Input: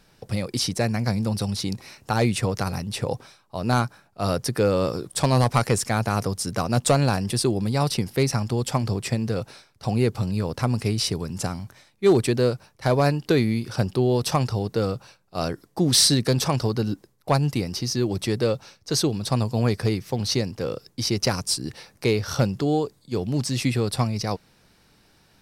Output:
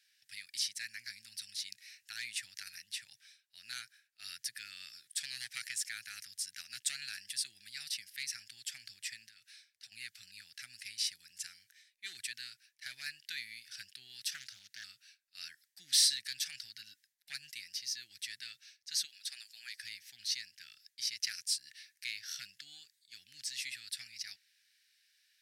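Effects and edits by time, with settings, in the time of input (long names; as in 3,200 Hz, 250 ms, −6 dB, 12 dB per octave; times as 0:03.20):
0:09.27–0:09.92: downward compressor 4 to 1, threshold −31 dBFS
0:14.34–0:14.84: highs frequency-modulated by the lows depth 0.83 ms
0:19.05–0:19.77: high-pass filter 540 Hz
whole clip: elliptic high-pass filter 1,700 Hz, stop band 40 dB; level −8.5 dB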